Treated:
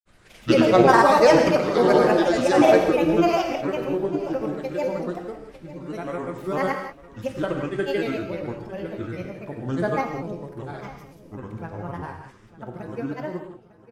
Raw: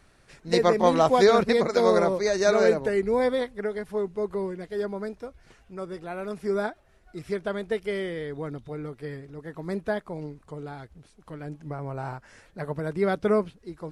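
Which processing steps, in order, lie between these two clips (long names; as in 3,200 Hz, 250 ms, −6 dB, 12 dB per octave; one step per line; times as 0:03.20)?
fade-out on the ending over 2.72 s
parametric band 5,700 Hz −5 dB 0.37 octaves
granular cloud, grains 20 per second, pitch spread up and down by 7 semitones
on a send: repeating echo 902 ms, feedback 28%, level −18 dB
on the sum: reverb whose tail is shaped and stops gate 210 ms flat, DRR 3.5 dB
level +3.5 dB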